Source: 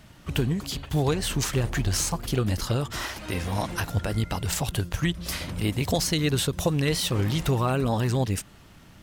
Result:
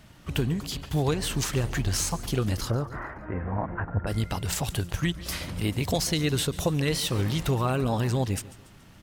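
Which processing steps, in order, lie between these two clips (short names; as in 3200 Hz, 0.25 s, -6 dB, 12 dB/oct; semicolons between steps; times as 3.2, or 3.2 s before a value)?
2.7–4.07 steep low-pass 1800 Hz 36 dB/oct; on a send: feedback echo 0.142 s, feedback 45%, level -18.5 dB; on the sum: gain -1.5 dB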